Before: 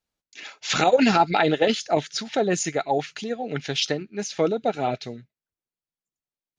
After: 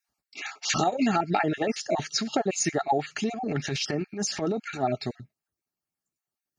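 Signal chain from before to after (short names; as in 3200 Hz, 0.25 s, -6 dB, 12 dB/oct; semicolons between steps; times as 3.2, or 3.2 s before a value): random spectral dropouts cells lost 26%; compressor 6:1, threshold -27 dBFS, peak gain reduction 14 dB; 3.3–4.83 transient shaper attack -11 dB, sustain +5 dB; bell 3400 Hz -9.5 dB 0.37 oct; notch comb 500 Hz; gain +6.5 dB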